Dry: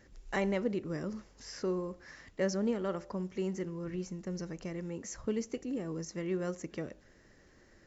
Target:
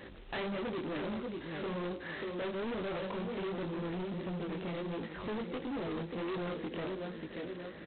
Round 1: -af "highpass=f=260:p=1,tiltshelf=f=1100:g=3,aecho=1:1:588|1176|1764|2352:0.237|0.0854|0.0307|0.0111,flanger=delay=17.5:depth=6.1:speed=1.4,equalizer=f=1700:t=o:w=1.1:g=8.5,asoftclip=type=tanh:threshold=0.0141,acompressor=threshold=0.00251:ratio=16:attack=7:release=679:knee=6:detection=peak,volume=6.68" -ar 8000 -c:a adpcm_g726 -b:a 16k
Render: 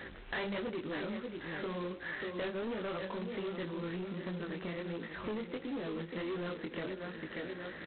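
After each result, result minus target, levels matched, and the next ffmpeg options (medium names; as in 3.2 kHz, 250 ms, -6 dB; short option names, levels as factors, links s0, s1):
2 kHz band +3.5 dB; saturation: distortion -5 dB
-af "highpass=f=260:p=1,tiltshelf=f=1100:g=3,aecho=1:1:588|1176|1764|2352:0.237|0.0854|0.0307|0.0111,flanger=delay=17.5:depth=6.1:speed=1.4,asoftclip=type=tanh:threshold=0.0141,acompressor=threshold=0.00251:ratio=16:attack=7:release=679:knee=6:detection=peak,volume=6.68" -ar 8000 -c:a adpcm_g726 -b:a 16k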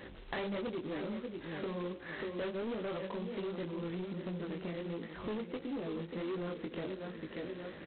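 saturation: distortion -6 dB
-af "highpass=f=260:p=1,tiltshelf=f=1100:g=3,aecho=1:1:588|1176|1764|2352:0.237|0.0854|0.0307|0.0111,flanger=delay=17.5:depth=6.1:speed=1.4,asoftclip=type=tanh:threshold=0.00447,acompressor=threshold=0.00251:ratio=16:attack=7:release=679:knee=6:detection=peak,volume=6.68" -ar 8000 -c:a adpcm_g726 -b:a 16k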